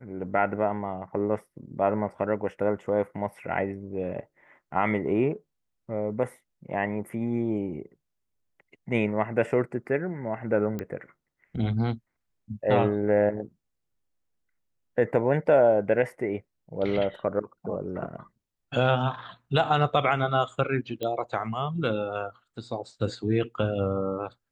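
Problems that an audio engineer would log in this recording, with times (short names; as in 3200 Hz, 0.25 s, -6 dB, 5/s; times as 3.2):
10.79 pop -20 dBFS
21.03 pop -19 dBFS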